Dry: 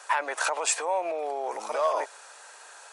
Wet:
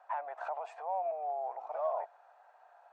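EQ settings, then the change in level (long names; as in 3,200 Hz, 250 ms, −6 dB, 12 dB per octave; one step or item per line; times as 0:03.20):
four-pole ladder band-pass 760 Hz, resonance 75%
−2.5 dB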